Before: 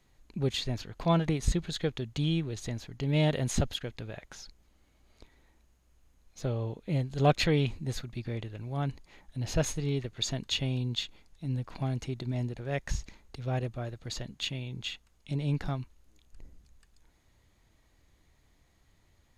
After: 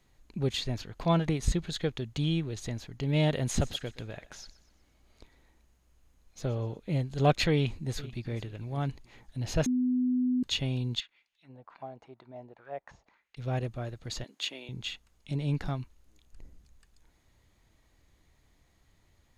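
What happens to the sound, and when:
3.42–6.78 thinning echo 0.123 s, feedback 46%, high-pass 310 Hz, level -17 dB
7.54–8.35 echo throw 0.44 s, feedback 30%, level -17.5 dB
9.66–10.43 bleep 251 Hz -24 dBFS
11–13.37 auto-wah 700–3400 Hz, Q 2.4, down, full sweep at -29.5 dBFS
14.24–14.69 HPF 300 Hz 24 dB/oct

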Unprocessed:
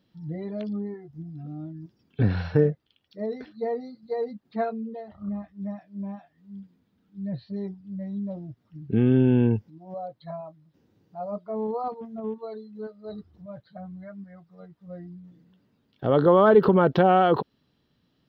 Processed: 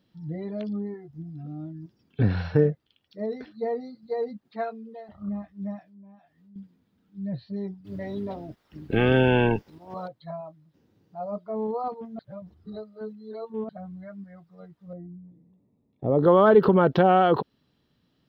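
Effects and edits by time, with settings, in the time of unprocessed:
4.48–5.09 low shelf 360 Hz -12 dB
5.82–6.56 compressor 2.5:1, threshold -56 dBFS
7.84–10.07 spectral limiter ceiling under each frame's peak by 22 dB
12.19–13.69 reverse
14.93–16.23 running mean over 29 samples

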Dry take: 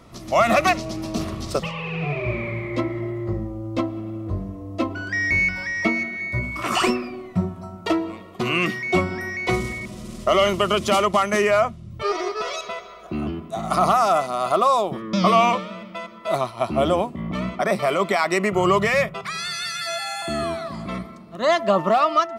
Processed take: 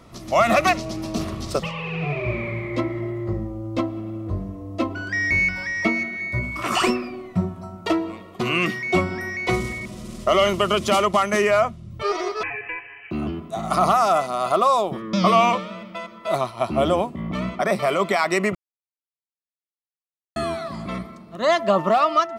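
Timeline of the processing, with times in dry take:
12.43–13.11 inverted band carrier 3000 Hz
18.55–20.36 mute

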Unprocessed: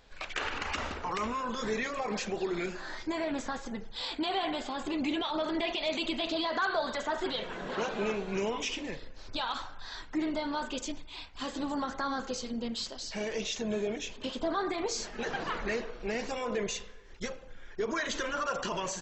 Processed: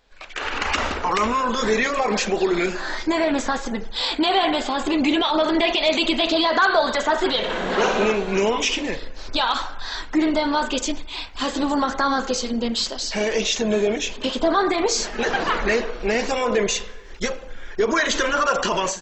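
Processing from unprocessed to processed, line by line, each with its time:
7.38–8.06 flutter echo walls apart 10 m, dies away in 0.79 s
whole clip: bell 120 Hz -8.5 dB 1 oct; AGC gain up to 15 dB; gain -2 dB

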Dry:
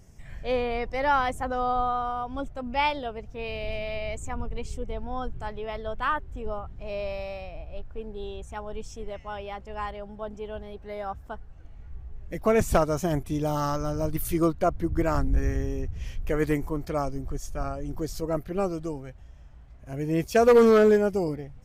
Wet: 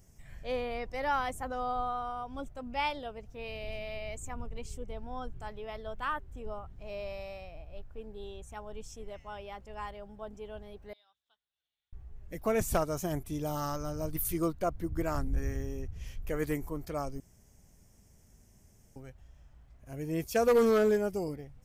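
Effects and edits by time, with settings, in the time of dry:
10.93–11.93 band-pass 3600 Hz, Q 8.5
17.2–18.96 room tone
whole clip: high shelf 7900 Hz +11.5 dB; gain -7.5 dB

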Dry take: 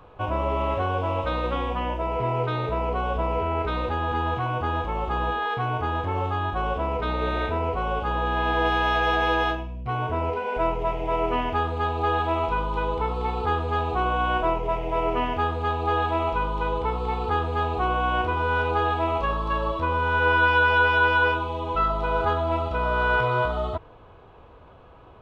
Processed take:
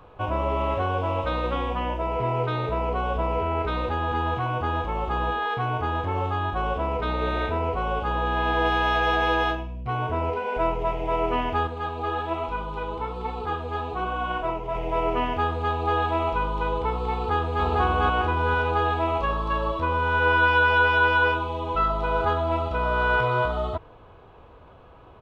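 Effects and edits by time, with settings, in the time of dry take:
11.67–14.75 flange 1.2 Hz, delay 3.3 ms, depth 6.3 ms, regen +53%
17.14–17.64 echo throw 0.45 s, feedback 40%, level -1 dB

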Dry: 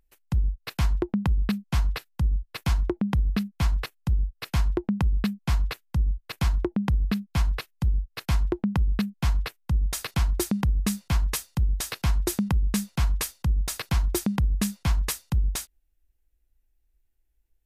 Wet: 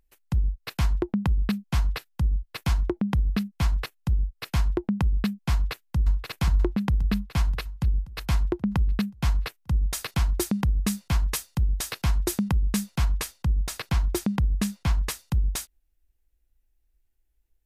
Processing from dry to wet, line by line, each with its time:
5.53–6.21 echo throw 0.53 s, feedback 60%, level -6 dB
13.05–15.19 high shelf 6300 Hz -5.5 dB

